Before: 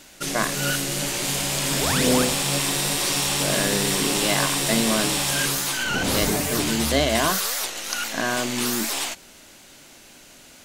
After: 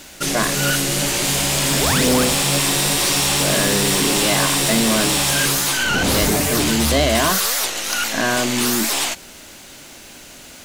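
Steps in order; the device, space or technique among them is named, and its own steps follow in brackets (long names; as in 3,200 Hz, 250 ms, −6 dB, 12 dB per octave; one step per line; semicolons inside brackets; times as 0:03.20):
open-reel tape (soft clipping −19 dBFS, distortion −13 dB; parametric band 64 Hz +4 dB; white noise bed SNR 37 dB)
level +7.5 dB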